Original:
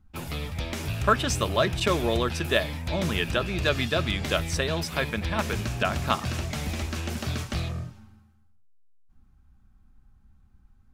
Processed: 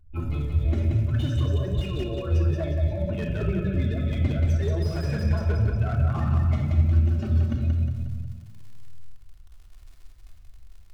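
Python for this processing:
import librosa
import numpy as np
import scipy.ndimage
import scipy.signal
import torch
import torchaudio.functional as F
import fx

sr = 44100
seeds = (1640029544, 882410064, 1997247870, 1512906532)

y = fx.spec_expand(x, sr, power=2.2)
y = fx.over_compress(y, sr, threshold_db=-30.0, ratio=-0.5)
y = fx.small_body(y, sr, hz=(560.0, 1500.0), ring_ms=90, db=9)
y = fx.dmg_crackle(y, sr, seeds[0], per_s=36.0, level_db=-40.0)
y = fx.echo_feedback(y, sr, ms=180, feedback_pct=46, wet_db=-5.0)
y = fx.room_shoebox(y, sr, seeds[1], volume_m3=2700.0, walls='furnished', distance_m=3.3)
y = fx.slew_limit(y, sr, full_power_hz=31.0)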